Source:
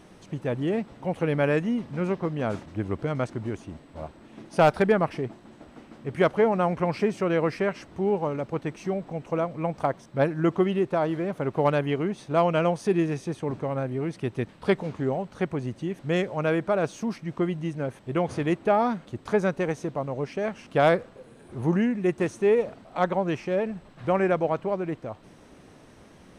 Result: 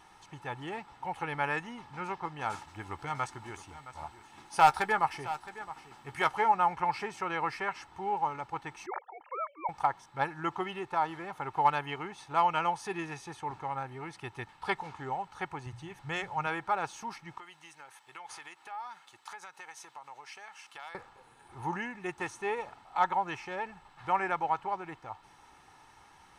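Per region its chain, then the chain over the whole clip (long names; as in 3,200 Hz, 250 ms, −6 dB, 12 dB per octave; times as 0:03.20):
0:02.41–0:06.52: high-shelf EQ 5,100 Hz +8.5 dB + double-tracking delay 14 ms −12 dB + single-tap delay 667 ms −15 dB
0:08.86–0:09.69: three sine waves on the formant tracks + low-shelf EQ 370 Hz −6 dB
0:15.66–0:16.47: low shelf with overshoot 160 Hz +7 dB, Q 1.5 + mains-hum notches 60/120/180 Hz
0:17.38–0:20.95: high-pass filter 1,500 Hz 6 dB per octave + downward compressor 5 to 1, threshold −39 dBFS + high-shelf EQ 5,400 Hz +5 dB
whole clip: low shelf with overshoot 660 Hz −9 dB, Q 3; comb filter 2.3 ms, depth 50%; level −4 dB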